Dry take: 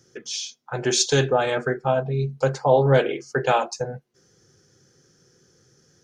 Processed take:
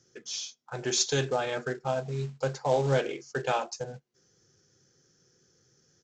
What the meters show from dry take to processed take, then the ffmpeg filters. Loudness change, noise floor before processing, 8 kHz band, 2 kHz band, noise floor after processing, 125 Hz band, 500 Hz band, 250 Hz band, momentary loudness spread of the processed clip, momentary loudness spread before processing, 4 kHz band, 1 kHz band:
−8.0 dB, −62 dBFS, −5.0 dB, −7.5 dB, −69 dBFS, −8.5 dB, −8.5 dB, −8.5 dB, 12 LU, 12 LU, −6.0 dB, −8.5 dB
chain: -af "highshelf=frequency=4300:gain=5,aresample=16000,acrusher=bits=5:mode=log:mix=0:aa=0.000001,aresample=44100,volume=-8.5dB"

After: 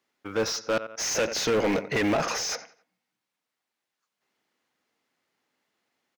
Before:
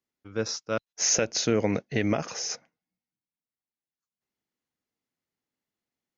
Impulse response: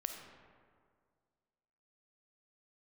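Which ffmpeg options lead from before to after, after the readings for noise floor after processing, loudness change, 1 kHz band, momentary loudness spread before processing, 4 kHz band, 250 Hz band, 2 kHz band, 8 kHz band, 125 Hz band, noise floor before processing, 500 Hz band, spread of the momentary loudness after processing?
below −85 dBFS, +0.5 dB, +5.5 dB, 10 LU, +1.0 dB, 0.0 dB, +4.5 dB, can't be measured, −4.0 dB, below −85 dBFS, +2.5 dB, 6 LU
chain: -filter_complex "[0:a]acrusher=bits=8:mode=log:mix=0:aa=0.000001,asplit=2[link_01][link_02];[link_02]adelay=90,lowpass=frequency=4100:poles=1,volume=-22dB,asplit=2[link_03][link_04];[link_04]adelay=90,lowpass=frequency=4100:poles=1,volume=0.4,asplit=2[link_05][link_06];[link_06]adelay=90,lowpass=frequency=4100:poles=1,volume=0.4[link_07];[link_01][link_03][link_05][link_07]amix=inputs=4:normalize=0,asplit=2[link_08][link_09];[link_09]highpass=frequency=720:poles=1,volume=28dB,asoftclip=type=tanh:threshold=-11.5dB[link_10];[link_08][link_10]amix=inputs=2:normalize=0,lowpass=frequency=2500:poles=1,volume=-6dB,volume=-4.5dB"

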